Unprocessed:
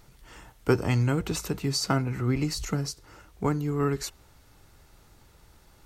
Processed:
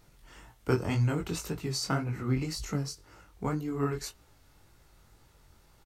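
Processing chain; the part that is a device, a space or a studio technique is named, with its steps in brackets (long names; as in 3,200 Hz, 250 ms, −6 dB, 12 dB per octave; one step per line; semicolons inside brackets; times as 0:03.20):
double-tracked vocal (double-tracking delay 24 ms −14 dB; chorus effect 1.9 Hz, delay 17.5 ms, depth 5.8 ms)
level −1.5 dB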